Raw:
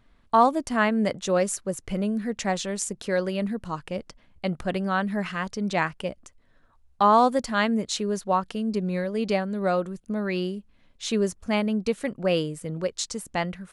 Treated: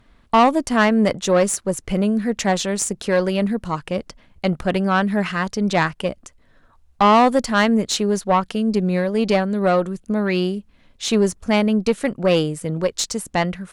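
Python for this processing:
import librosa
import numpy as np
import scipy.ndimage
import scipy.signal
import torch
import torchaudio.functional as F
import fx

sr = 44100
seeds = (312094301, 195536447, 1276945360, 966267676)

y = fx.tube_stage(x, sr, drive_db=16.0, bias=0.35)
y = y * 10.0 ** (8.5 / 20.0)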